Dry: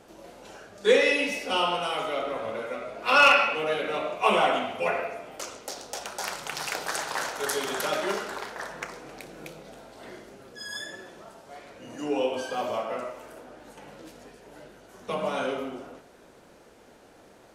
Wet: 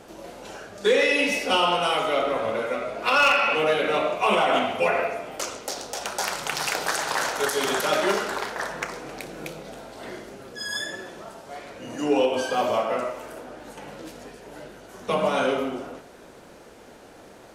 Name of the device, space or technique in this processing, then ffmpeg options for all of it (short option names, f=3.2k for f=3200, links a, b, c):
limiter into clipper: -af "alimiter=limit=-17.5dB:level=0:latency=1:release=133,asoftclip=type=hard:threshold=-19dB,volume=6.5dB"